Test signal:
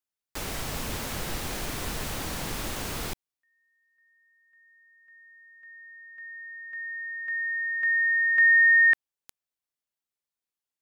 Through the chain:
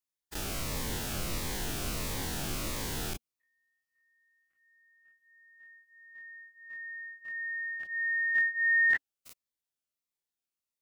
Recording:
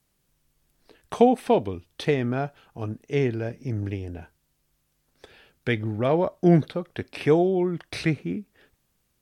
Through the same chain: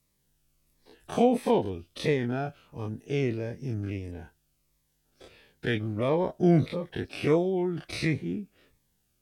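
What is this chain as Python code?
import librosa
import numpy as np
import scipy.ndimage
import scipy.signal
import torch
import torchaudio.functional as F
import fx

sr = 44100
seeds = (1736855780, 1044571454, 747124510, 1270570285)

y = fx.spec_dilate(x, sr, span_ms=60)
y = fx.notch_cascade(y, sr, direction='falling', hz=1.5)
y = y * 10.0 ** (-5.0 / 20.0)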